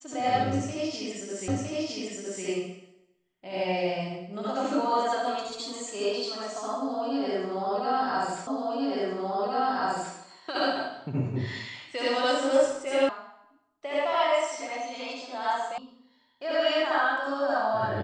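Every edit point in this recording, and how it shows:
1.48 repeat of the last 0.96 s
8.47 repeat of the last 1.68 s
13.09 sound cut off
15.78 sound cut off

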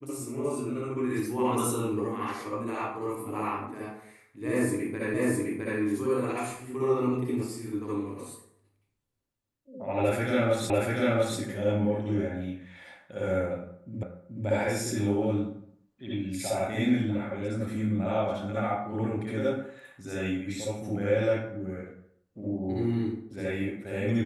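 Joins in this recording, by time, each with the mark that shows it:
5.14 repeat of the last 0.66 s
10.7 repeat of the last 0.69 s
14.03 repeat of the last 0.43 s

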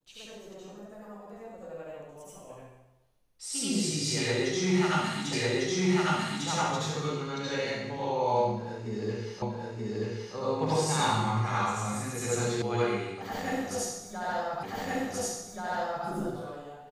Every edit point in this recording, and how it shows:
5.33 repeat of the last 1.15 s
9.42 repeat of the last 0.93 s
12.62 sound cut off
14.63 repeat of the last 1.43 s

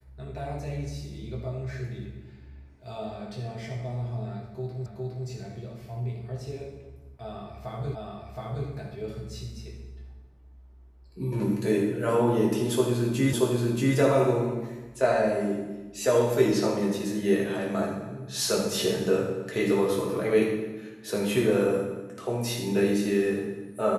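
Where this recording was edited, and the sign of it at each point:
4.86 repeat of the last 0.41 s
7.95 repeat of the last 0.72 s
13.33 repeat of the last 0.63 s

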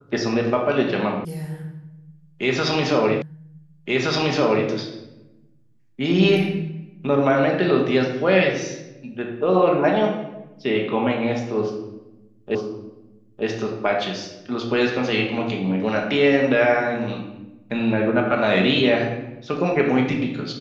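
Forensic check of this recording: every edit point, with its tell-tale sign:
1.25 sound cut off
3.22 repeat of the last 1.47 s
12.55 repeat of the last 0.91 s

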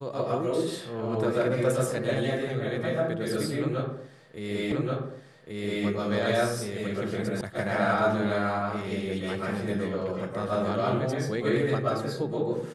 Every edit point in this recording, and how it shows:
4.72 repeat of the last 1.13 s
7.41 sound cut off

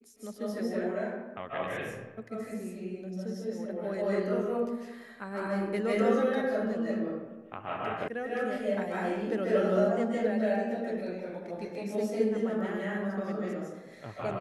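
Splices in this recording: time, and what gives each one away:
8.08 sound cut off

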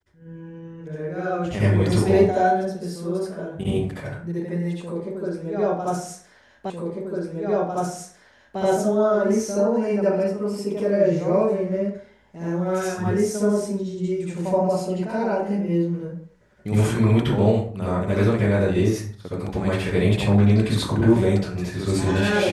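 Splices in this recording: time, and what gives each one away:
6.7 repeat of the last 1.9 s

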